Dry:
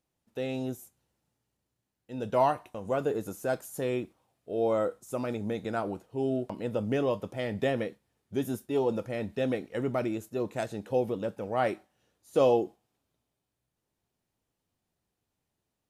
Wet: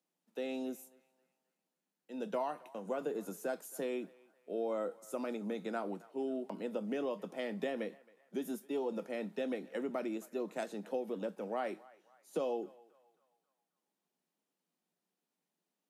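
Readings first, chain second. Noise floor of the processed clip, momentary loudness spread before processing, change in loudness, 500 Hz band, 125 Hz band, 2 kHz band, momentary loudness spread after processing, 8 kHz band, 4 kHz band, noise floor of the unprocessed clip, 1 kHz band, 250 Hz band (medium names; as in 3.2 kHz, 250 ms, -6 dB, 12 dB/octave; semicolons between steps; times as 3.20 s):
under -85 dBFS, 10 LU, -8.5 dB, -8.5 dB, -17.5 dB, -7.5 dB, 7 LU, -5.0 dB, -7.5 dB, -84 dBFS, -10.0 dB, -7.0 dB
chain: compression 6:1, threshold -28 dBFS, peak gain reduction 9 dB; steep high-pass 160 Hz 96 dB/octave; band-passed feedback delay 269 ms, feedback 51%, band-pass 1.3 kHz, level -20 dB; trim -4.5 dB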